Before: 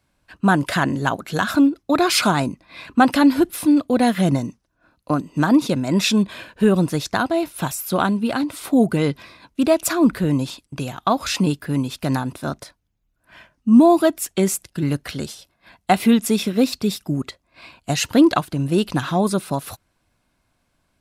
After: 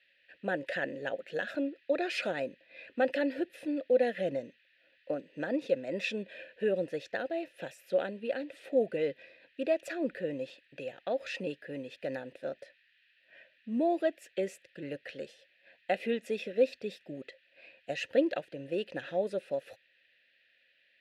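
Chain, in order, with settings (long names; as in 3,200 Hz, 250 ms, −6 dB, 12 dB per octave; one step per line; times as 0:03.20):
noise in a band 1,500–4,300 Hz −56 dBFS
formant filter e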